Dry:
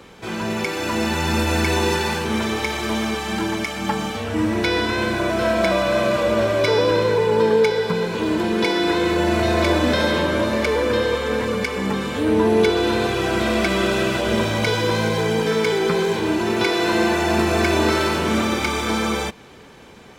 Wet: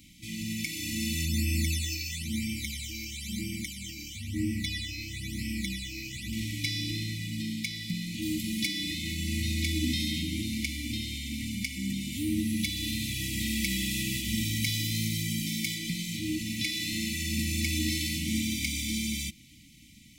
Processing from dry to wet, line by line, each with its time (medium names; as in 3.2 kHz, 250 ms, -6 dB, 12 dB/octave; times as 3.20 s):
1.25–6.33 s: phase shifter stages 12, 1 Hz, lowest notch 180–1300 Hz
8.22–8.67 s: treble shelf 7.9 kHz +8 dB
12.12–15.75 s: treble shelf 12 kHz +8.5 dB
whole clip: pre-emphasis filter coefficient 0.8; FFT band-reject 330–1900 Hz; bass shelf 280 Hz +9 dB